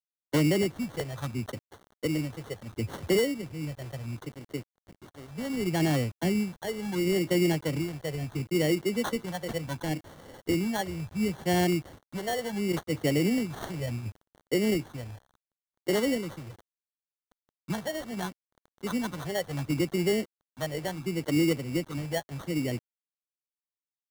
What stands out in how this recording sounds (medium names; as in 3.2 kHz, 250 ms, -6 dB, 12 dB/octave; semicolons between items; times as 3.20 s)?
a quantiser's noise floor 8-bit, dither none; phasing stages 4, 0.71 Hz, lowest notch 260–3400 Hz; aliases and images of a low sample rate 2.5 kHz, jitter 0%